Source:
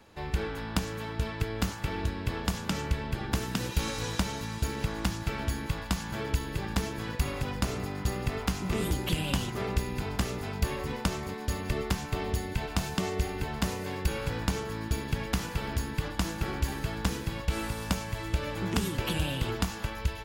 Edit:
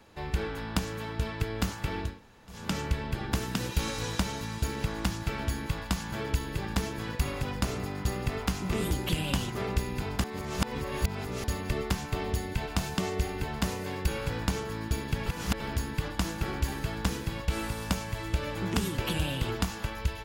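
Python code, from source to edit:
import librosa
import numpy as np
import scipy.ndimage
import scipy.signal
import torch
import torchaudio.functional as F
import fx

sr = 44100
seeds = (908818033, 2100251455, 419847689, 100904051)

y = fx.edit(x, sr, fx.room_tone_fill(start_s=2.1, length_s=0.49, crossfade_s=0.24),
    fx.reverse_span(start_s=10.24, length_s=1.2),
    fx.reverse_span(start_s=15.26, length_s=0.34), tone=tone)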